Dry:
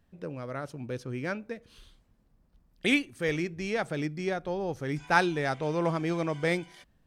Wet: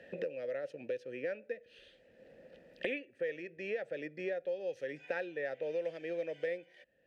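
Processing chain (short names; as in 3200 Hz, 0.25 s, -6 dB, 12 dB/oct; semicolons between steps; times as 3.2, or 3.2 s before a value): vowel filter e; three-band squash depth 100%; gain +1 dB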